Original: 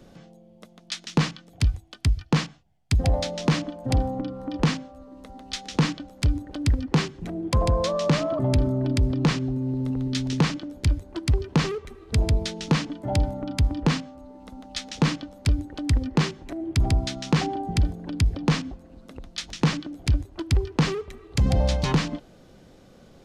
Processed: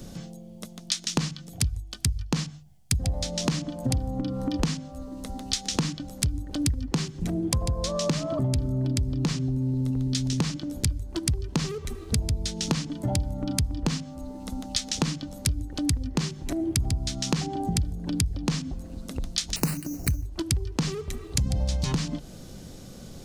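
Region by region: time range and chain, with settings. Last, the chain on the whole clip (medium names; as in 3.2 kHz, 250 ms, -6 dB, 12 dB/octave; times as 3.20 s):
19.56–20.26 s: sample-rate reducer 6.2 kHz + Butterworth band-stop 3.4 kHz, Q 2.7
whole clip: tone controls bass +9 dB, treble +14 dB; hum notches 50/100/150 Hz; compression 6:1, threshold -27 dBFS; trim +3 dB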